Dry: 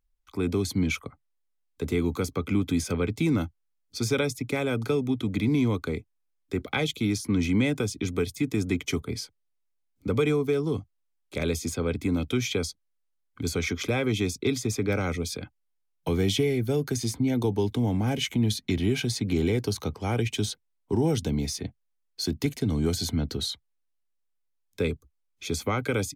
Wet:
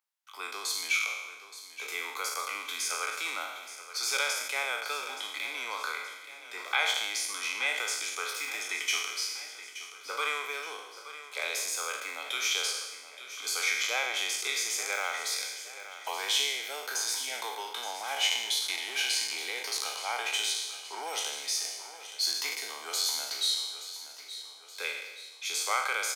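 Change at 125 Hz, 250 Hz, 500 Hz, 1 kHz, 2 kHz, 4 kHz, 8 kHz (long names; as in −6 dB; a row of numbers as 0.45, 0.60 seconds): below −40 dB, −32.0 dB, −14.5 dB, +3.0 dB, +4.5 dB, +5.0 dB, +5.5 dB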